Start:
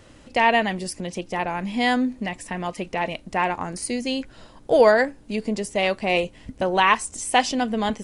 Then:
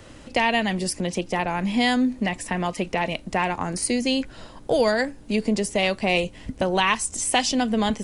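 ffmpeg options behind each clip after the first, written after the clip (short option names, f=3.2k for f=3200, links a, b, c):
-filter_complex "[0:a]acrossover=split=220|3000[a][b][c];[b]acompressor=threshold=-27dB:ratio=3[d];[a][d][c]amix=inputs=3:normalize=0,volume=4.5dB"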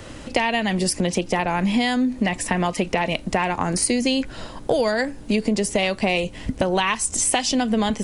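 -af "acompressor=threshold=-24dB:ratio=6,volume=7dB"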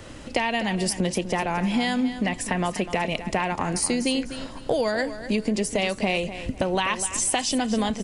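-af "aecho=1:1:250|500|750:0.251|0.0678|0.0183,volume=-3.5dB"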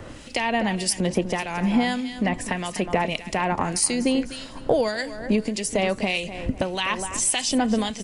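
-filter_complex "[0:a]acrossover=split=2000[a][b];[a]aeval=exprs='val(0)*(1-0.7/2+0.7/2*cos(2*PI*1.7*n/s))':c=same[c];[b]aeval=exprs='val(0)*(1-0.7/2-0.7/2*cos(2*PI*1.7*n/s))':c=same[d];[c][d]amix=inputs=2:normalize=0,volume=4dB"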